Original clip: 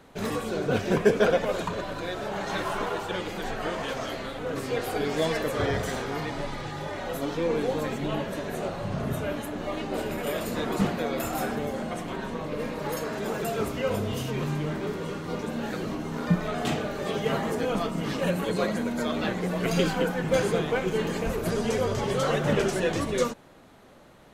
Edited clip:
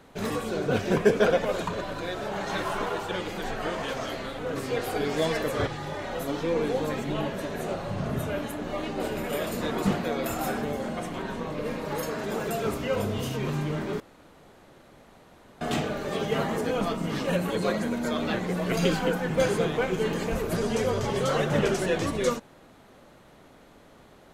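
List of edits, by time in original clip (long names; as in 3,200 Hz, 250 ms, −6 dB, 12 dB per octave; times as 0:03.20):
0:05.67–0:06.61: remove
0:14.94–0:16.55: fill with room tone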